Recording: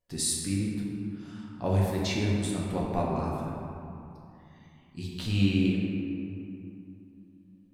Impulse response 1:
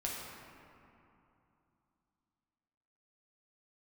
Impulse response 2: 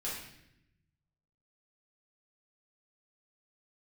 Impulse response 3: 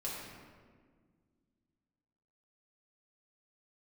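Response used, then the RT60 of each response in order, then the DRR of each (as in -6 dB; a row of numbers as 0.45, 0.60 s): 1; 2.8, 0.80, 1.7 s; -4.0, -7.5, -6.5 dB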